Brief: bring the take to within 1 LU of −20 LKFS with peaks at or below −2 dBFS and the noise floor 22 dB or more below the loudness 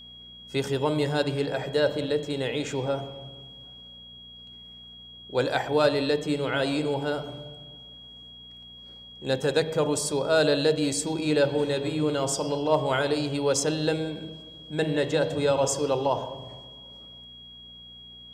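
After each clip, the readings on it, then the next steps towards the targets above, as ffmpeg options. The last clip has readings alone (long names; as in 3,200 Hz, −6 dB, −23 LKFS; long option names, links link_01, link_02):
mains hum 60 Hz; hum harmonics up to 240 Hz; level of the hum −55 dBFS; interfering tone 3,300 Hz; level of the tone −44 dBFS; integrated loudness −26.0 LKFS; sample peak −10.0 dBFS; target loudness −20.0 LKFS
→ -af "bandreject=frequency=60:width_type=h:width=4,bandreject=frequency=120:width_type=h:width=4,bandreject=frequency=180:width_type=h:width=4,bandreject=frequency=240:width_type=h:width=4"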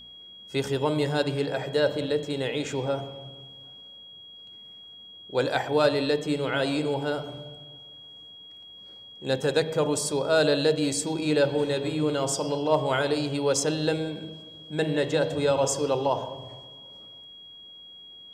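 mains hum none found; interfering tone 3,300 Hz; level of the tone −44 dBFS
→ -af "bandreject=frequency=3300:width=30"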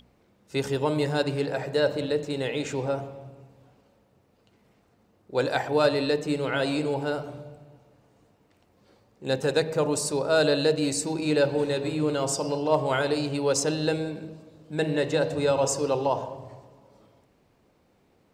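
interfering tone none found; integrated loudness −26.0 LKFS; sample peak −10.0 dBFS; target loudness −20.0 LKFS
→ -af "volume=6dB"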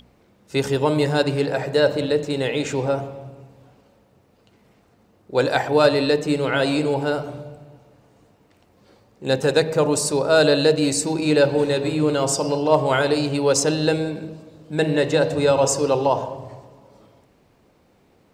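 integrated loudness −20.0 LKFS; sample peak −4.0 dBFS; background noise floor −59 dBFS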